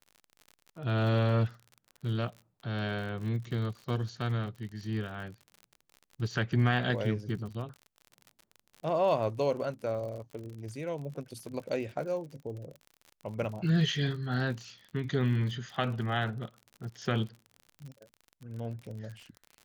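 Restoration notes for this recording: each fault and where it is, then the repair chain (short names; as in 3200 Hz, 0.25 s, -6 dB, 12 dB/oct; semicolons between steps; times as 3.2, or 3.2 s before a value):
crackle 51/s -40 dBFS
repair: de-click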